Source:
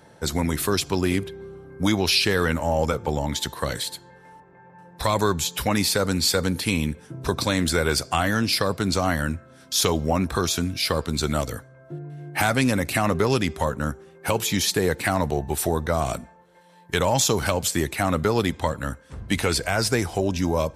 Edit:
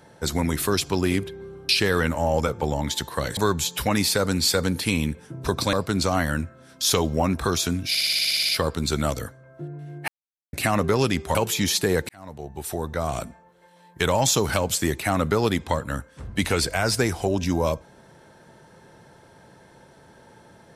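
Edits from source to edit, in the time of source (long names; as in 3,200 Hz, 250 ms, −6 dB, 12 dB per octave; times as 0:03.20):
0:01.69–0:02.14: remove
0:03.82–0:05.17: remove
0:07.53–0:08.64: remove
0:10.80: stutter 0.06 s, 11 plays
0:12.39–0:12.84: silence
0:13.66–0:14.28: remove
0:15.02–0:16.98: fade in equal-power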